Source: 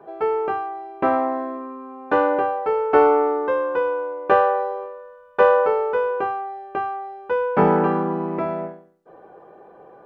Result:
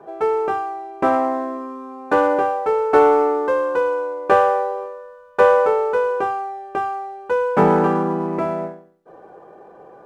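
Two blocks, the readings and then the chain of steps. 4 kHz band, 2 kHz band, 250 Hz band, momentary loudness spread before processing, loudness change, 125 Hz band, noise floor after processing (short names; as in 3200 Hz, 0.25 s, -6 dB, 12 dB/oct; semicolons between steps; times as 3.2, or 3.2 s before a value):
n/a, +2.0 dB, +2.0 dB, 15 LU, +2.0 dB, +2.0 dB, -45 dBFS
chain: median filter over 9 samples; in parallel at -9 dB: soft clip -13.5 dBFS, distortion -13 dB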